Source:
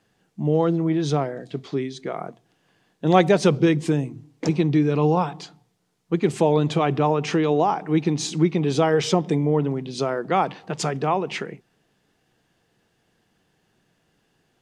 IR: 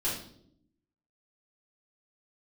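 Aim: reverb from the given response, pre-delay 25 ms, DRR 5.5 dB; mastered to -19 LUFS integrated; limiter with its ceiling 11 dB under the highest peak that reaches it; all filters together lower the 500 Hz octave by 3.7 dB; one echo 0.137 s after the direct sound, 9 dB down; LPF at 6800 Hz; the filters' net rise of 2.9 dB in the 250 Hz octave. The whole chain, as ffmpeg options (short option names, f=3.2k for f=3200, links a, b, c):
-filter_complex "[0:a]lowpass=6.8k,equalizer=f=250:t=o:g=8,equalizer=f=500:t=o:g=-8,alimiter=limit=-14dB:level=0:latency=1,aecho=1:1:137:0.355,asplit=2[a][b];[1:a]atrim=start_sample=2205,adelay=25[c];[b][c]afir=irnorm=-1:irlink=0,volume=-11.5dB[d];[a][d]amix=inputs=2:normalize=0,volume=3dB"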